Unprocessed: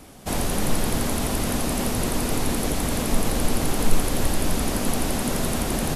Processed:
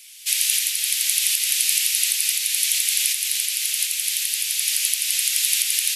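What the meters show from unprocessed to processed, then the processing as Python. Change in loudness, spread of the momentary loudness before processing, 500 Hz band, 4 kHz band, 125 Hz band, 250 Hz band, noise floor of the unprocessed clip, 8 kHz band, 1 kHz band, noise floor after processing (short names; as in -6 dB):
+6.0 dB, 0 LU, under -40 dB, +10.5 dB, under -40 dB, under -40 dB, -27 dBFS, +10.5 dB, under -25 dB, -27 dBFS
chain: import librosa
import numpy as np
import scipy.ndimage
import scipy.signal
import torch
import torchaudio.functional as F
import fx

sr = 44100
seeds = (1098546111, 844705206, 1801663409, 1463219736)

y = fx.recorder_agc(x, sr, target_db=-9.5, rise_db_per_s=17.0, max_gain_db=30)
y = scipy.signal.sosfilt(scipy.signal.butter(6, 2300.0, 'highpass', fs=sr, output='sos'), y)
y = y * 10.0 ** (7.5 / 20.0)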